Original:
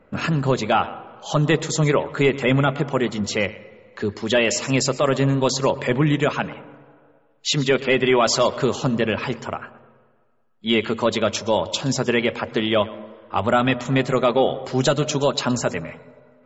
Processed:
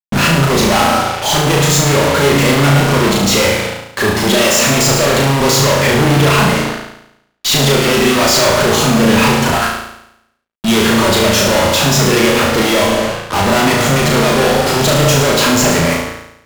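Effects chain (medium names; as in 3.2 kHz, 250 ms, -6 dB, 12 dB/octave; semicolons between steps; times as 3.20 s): fuzz box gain 46 dB, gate -40 dBFS; on a send: flutter echo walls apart 6.1 m, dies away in 0.79 s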